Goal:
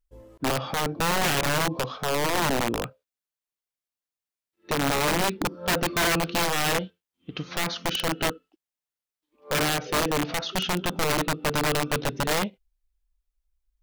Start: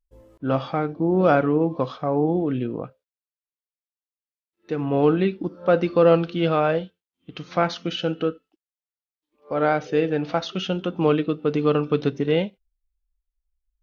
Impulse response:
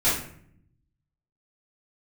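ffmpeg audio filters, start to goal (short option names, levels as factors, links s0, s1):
-af "acontrast=76,alimiter=limit=0.316:level=0:latency=1:release=156,aeval=exprs='(mod(5.01*val(0)+1,2)-1)/5.01':c=same,volume=0.596"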